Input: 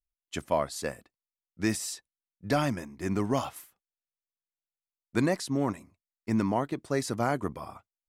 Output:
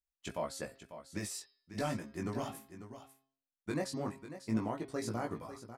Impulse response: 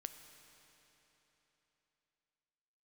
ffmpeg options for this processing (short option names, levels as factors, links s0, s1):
-af "atempo=1.4,alimiter=limit=0.119:level=0:latency=1:release=107,bandreject=f=134.9:t=h:w=4,bandreject=f=269.8:t=h:w=4,bandreject=f=404.7:t=h:w=4,bandreject=f=539.6:t=h:w=4,bandreject=f=674.5:t=h:w=4,bandreject=f=809.4:t=h:w=4,bandreject=f=944.3:t=h:w=4,bandreject=f=1079.2:t=h:w=4,bandreject=f=1214.1:t=h:w=4,bandreject=f=1349:t=h:w=4,bandreject=f=1483.9:t=h:w=4,bandreject=f=1618.8:t=h:w=4,bandreject=f=1753.7:t=h:w=4,bandreject=f=1888.6:t=h:w=4,bandreject=f=2023.5:t=h:w=4,bandreject=f=2158.4:t=h:w=4,bandreject=f=2293.3:t=h:w=4,bandreject=f=2428.2:t=h:w=4,bandreject=f=2563.1:t=h:w=4,bandreject=f=2698:t=h:w=4,bandreject=f=2832.9:t=h:w=4,bandreject=f=2967.8:t=h:w=4,bandreject=f=3102.7:t=h:w=4,bandreject=f=3237.6:t=h:w=4,bandreject=f=3372.5:t=h:w=4,bandreject=f=3507.4:t=h:w=4,bandreject=f=3642.3:t=h:w=4,bandreject=f=3777.2:t=h:w=4,bandreject=f=3912.1:t=h:w=4,bandreject=f=4047:t=h:w=4,bandreject=f=4181.9:t=h:w=4,bandreject=f=4316.8:t=h:w=4,bandreject=f=4451.7:t=h:w=4,bandreject=f=4586.6:t=h:w=4,bandreject=f=4721.5:t=h:w=4,bandreject=f=4856.4:t=h:w=4,bandreject=f=4991.3:t=h:w=4,bandreject=f=5126.2:t=h:w=4,bandreject=f=5261.1:t=h:w=4,bandreject=f=5396:t=h:w=4,flanger=delay=17.5:depth=2.4:speed=0.4,aecho=1:1:545:0.251,volume=0.708"